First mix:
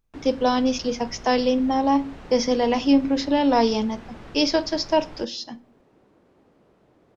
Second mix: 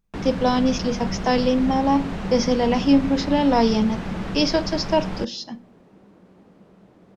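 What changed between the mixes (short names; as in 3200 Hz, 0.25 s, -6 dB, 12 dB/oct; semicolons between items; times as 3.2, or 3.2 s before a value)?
first sound +10.5 dB; second sound +5.0 dB; master: add bell 190 Hz +14 dB 0.27 oct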